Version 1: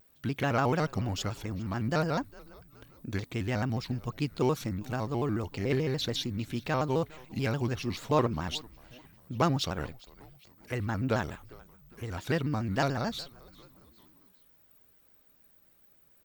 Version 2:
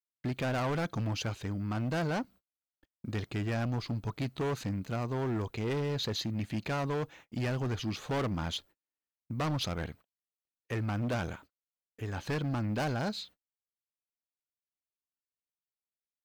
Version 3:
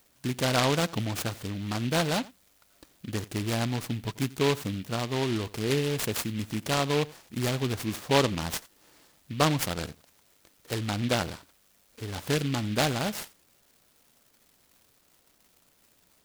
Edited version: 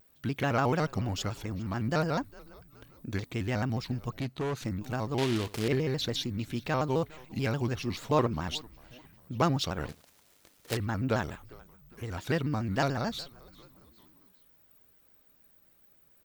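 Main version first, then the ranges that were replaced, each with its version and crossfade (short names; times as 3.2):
1
4.2–4.62 from 2
5.18–5.68 from 3
9.89–10.77 from 3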